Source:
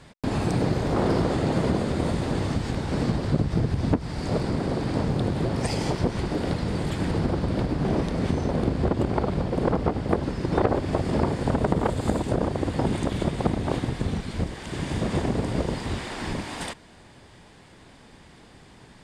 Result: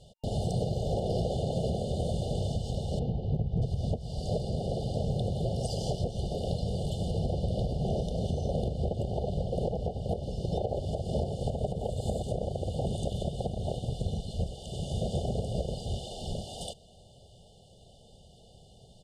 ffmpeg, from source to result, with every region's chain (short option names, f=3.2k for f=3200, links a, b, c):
-filter_complex "[0:a]asettb=1/sr,asplit=3[a][b][c];[a]atrim=end=2.994[d];[b]atrim=start=2.99:end=3.62,asetpts=PTS-STARTPTS,afade=t=in:d=0.004:c=qsin,afade=t=out:st=0.626:d=0.004:c=qsin,lowpass=2k,equalizer=f=600:w=5:g=-9,asoftclip=type=hard:threshold=-15dB[e];[c]atrim=start=3.616[f];[d][e]acrossfade=d=0.004:c1=hsin:c2=qsin[g];[g][f]acrossfade=d=0.004:c1=qsin:c2=hsin,afftfilt=real='re*(1-between(b*sr/4096,910,2800))':imag='im*(1-between(b*sr/4096,910,2800))':win_size=4096:overlap=0.75,aecho=1:1:1.7:0.8,alimiter=limit=-13dB:level=0:latency=1:release=209,volume=-6.5dB"